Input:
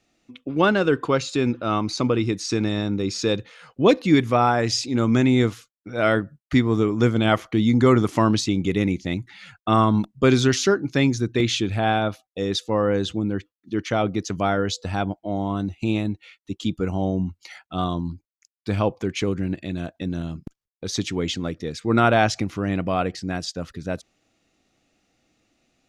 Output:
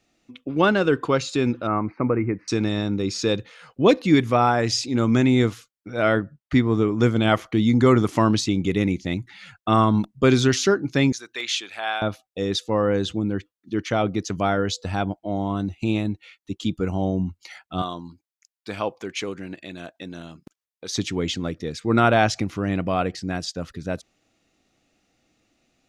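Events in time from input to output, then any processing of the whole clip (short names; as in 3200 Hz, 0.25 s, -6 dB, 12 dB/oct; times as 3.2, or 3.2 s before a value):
1.67–2.48 elliptic low-pass 2200 Hz
6.02–7.01 LPF 4000 Hz 6 dB/oct
11.12–12.02 HPF 1000 Hz
17.82–20.95 HPF 620 Hz 6 dB/oct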